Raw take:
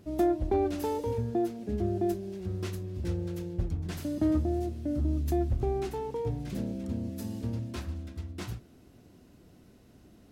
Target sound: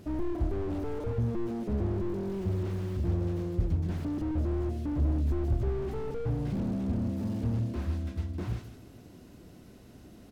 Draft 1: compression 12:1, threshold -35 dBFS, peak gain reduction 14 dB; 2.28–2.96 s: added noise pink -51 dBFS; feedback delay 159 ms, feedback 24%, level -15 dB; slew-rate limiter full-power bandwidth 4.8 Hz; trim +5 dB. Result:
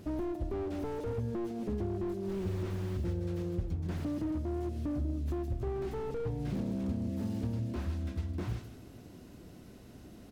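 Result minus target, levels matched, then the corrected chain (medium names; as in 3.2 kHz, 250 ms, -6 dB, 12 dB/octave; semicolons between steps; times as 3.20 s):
compression: peak gain reduction +8.5 dB
compression 12:1, threshold -26 dBFS, peak gain reduction 5.5 dB; 2.28–2.96 s: added noise pink -51 dBFS; feedback delay 159 ms, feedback 24%, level -15 dB; slew-rate limiter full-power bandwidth 4.8 Hz; trim +5 dB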